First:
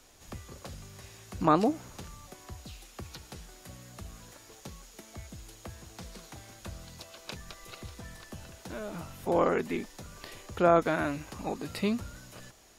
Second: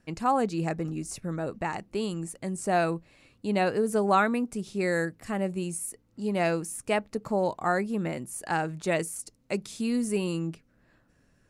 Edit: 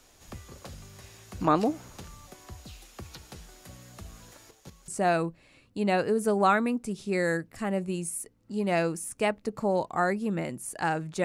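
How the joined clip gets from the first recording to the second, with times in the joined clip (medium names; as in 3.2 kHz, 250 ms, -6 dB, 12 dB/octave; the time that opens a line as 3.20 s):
first
4.48–4.88 s: square tremolo 5.3 Hz, depth 60%, duty 15%
4.88 s: go over to second from 2.56 s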